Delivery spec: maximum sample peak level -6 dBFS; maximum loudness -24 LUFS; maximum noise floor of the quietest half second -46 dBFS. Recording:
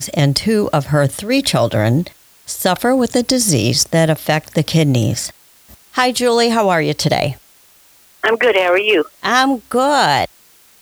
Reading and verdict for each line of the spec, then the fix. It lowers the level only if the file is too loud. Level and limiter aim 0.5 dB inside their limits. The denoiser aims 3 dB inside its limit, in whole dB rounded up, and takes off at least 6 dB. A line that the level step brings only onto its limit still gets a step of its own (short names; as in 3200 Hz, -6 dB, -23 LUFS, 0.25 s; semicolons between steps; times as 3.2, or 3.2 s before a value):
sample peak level -2.0 dBFS: fail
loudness -15.0 LUFS: fail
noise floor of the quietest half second -49 dBFS: OK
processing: gain -9.5 dB